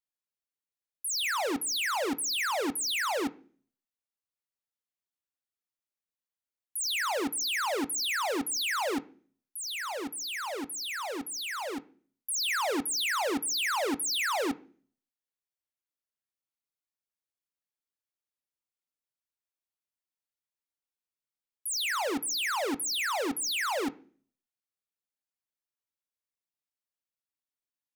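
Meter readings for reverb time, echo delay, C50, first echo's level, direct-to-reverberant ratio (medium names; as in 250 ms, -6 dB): 0.45 s, no echo, 20.5 dB, no echo, 11.0 dB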